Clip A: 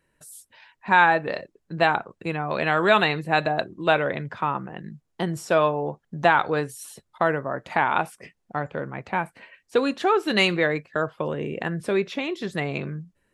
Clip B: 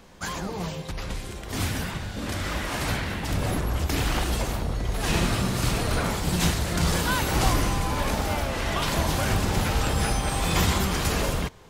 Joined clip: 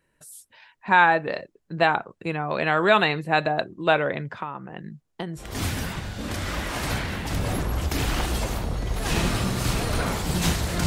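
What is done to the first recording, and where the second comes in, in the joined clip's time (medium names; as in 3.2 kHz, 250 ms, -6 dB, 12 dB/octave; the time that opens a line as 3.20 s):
clip A
4.33–5.45 s: compression 5:1, threshold -29 dBFS
5.40 s: go over to clip B from 1.38 s, crossfade 0.10 s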